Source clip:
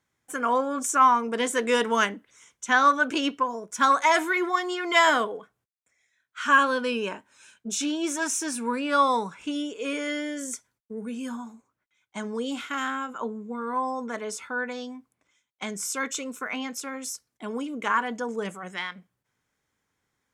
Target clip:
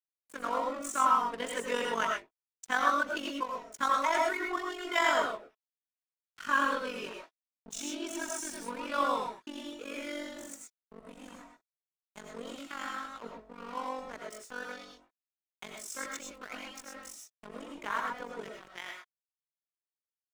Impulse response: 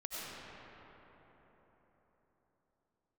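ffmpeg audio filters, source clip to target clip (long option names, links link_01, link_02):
-filter_complex "[0:a]acrossover=split=210[link_01][link_02];[link_01]acompressor=threshold=-50dB:ratio=6[link_03];[link_03][link_02]amix=inputs=2:normalize=0,tremolo=f=47:d=0.667,aeval=exprs='sgn(val(0))*max(abs(val(0))-0.0112,0)':channel_layout=same[link_04];[1:a]atrim=start_sample=2205,afade=type=out:start_time=0.18:duration=0.01,atrim=end_sample=8379[link_05];[link_04][link_05]afir=irnorm=-1:irlink=0,adynamicequalizer=threshold=0.0112:dfrequency=2400:dqfactor=0.7:tfrequency=2400:tqfactor=0.7:attack=5:release=100:ratio=0.375:range=1.5:mode=cutabove:tftype=highshelf"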